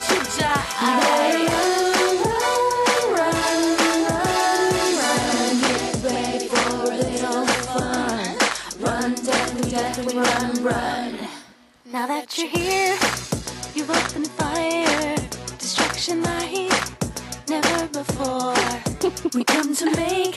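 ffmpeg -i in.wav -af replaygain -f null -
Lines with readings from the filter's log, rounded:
track_gain = +2.0 dB
track_peak = 0.425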